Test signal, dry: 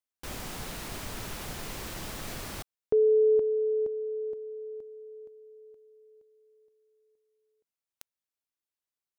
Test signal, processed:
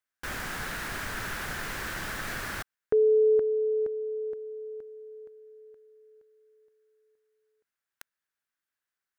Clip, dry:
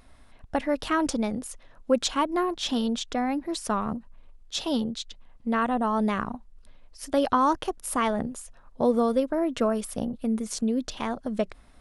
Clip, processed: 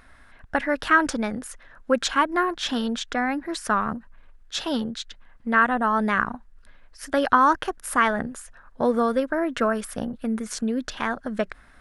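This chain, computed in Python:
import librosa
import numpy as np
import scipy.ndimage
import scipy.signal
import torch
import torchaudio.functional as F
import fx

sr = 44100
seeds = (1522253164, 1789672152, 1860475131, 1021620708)

y = fx.peak_eq(x, sr, hz=1600.0, db=14.0, octaves=0.82)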